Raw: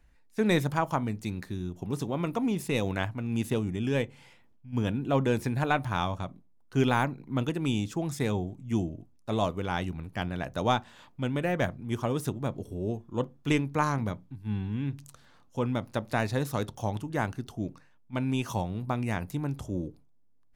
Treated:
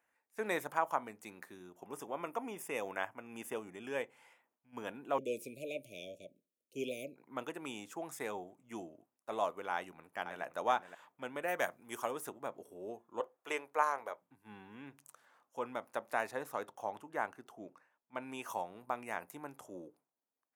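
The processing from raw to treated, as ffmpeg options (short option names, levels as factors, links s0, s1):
-filter_complex "[0:a]asettb=1/sr,asplit=3[s0][s1][s2];[s0]atrim=end=1.854[s3];[s1]atrim=start=1.85:end=4.01,asetpts=PTS-STARTPTS,afade=t=in:d=0.004:c=qsin,afade=t=out:st=2.156:d=0.004:c=qsin,asuperstop=centerf=4100:order=20:qfactor=4.2[s4];[s2]atrim=start=4.006[s5];[s3][s4]acrossfade=d=0.004:c1=hsin:c2=qsin[s6];[s6][s5]acrossfade=d=0.004:c1=qsin:c2=hsin,asettb=1/sr,asplit=3[s7][s8][s9];[s7]atrim=end=5.184[s10];[s8]atrim=start=5.18:end=7.16,asetpts=PTS-STARTPTS,afade=t=in:d=0.004:c=qsin,afade=t=out:st=1.976:d=0.004:c=qsin,asuperstop=centerf=1200:order=20:qfactor=0.7[s11];[s9]atrim=start=7.156[s12];[s10][s11]acrossfade=d=0.004:c1=hsin:c2=qsin[s13];[s13][s12]acrossfade=d=0.004:c1=qsin:c2=hsin,asplit=2[s14][s15];[s15]afade=t=in:st=9.73:d=0.01,afade=t=out:st=10.42:d=0.01,aecho=0:1:520|1040:0.354813|0.053222[s16];[s14][s16]amix=inputs=2:normalize=0,asettb=1/sr,asplit=3[s17][s18][s19];[s17]atrim=end=11.484[s20];[s18]atrim=start=11.48:end=12.11,asetpts=PTS-STARTPTS,afade=t=in:d=0.004:c=qsin,afade=t=out:st=0.626:d=0.004:c=qsin,highshelf=f=3500:g=11.5[s21];[s19]atrim=start=12.106[s22];[s20][s21]acrossfade=d=0.004:c1=hsin:c2=qsin[s23];[s23][s22]acrossfade=d=0.004:c1=qsin:c2=hsin,asettb=1/sr,asplit=3[s24][s25][s26];[s24]atrim=end=13.204[s27];[s25]atrim=start=13.2:end=14.22,asetpts=PTS-STARTPTS,afade=t=in:d=0.004:c=qsin,afade=t=out:st=1.016:d=0.004:c=qsin,lowshelf=f=320:t=q:w=1.5:g=-12[s28];[s26]atrim=start=14.216[s29];[s27][s28]acrossfade=d=0.004:c1=hsin:c2=qsin[s30];[s30][s29]acrossfade=d=0.004:c1=qsin:c2=hsin,asettb=1/sr,asplit=3[s31][s32][s33];[s31]atrim=end=16.314[s34];[s32]atrim=start=16.31:end=18.22,asetpts=PTS-STARTPTS,afade=t=in:d=0.004:c=qsin,afade=t=out:st=1.906:d=0.004:c=qsin,highshelf=f=4400:g=-7[s35];[s33]atrim=start=18.216[s36];[s34][s35]acrossfade=d=0.004:c1=hsin:c2=qsin[s37];[s37][s36]acrossfade=d=0.004:c1=qsin:c2=hsin,highpass=630,equalizer=f=4200:t=o:w=1.3:g=-13,volume=0.794"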